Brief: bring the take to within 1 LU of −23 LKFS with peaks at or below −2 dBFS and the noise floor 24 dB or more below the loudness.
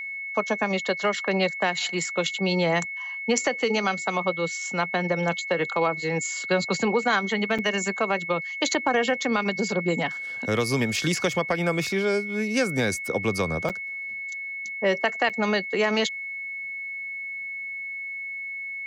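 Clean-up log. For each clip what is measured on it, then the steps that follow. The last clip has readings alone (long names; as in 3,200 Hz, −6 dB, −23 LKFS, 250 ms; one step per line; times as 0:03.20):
number of dropouts 3; longest dropout 6.7 ms; interfering tone 2,200 Hz; level of the tone −31 dBFS; integrated loudness −25.5 LKFS; sample peak −8.5 dBFS; target loudness −23.0 LKFS
→ repair the gap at 0:07.58/0:13.69/0:15.29, 6.7 ms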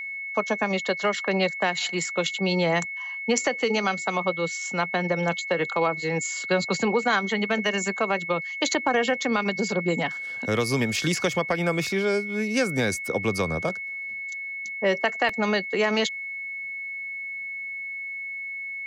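number of dropouts 0; interfering tone 2,200 Hz; level of the tone −31 dBFS
→ notch filter 2,200 Hz, Q 30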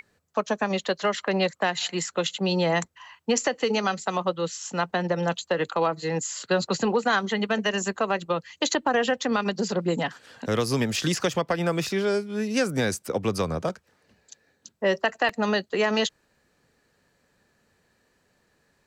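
interfering tone none found; integrated loudness −26.0 LKFS; sample peak −9.0 dBFS; target loudness −23.0 LKFS
→ level +3 dB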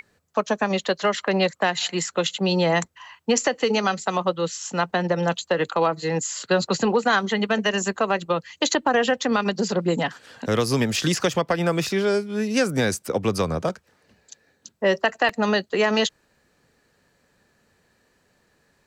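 integrated loudness −23.0 LKFS; sample peak −6.0 dBFS; background noise floor −65 dBFS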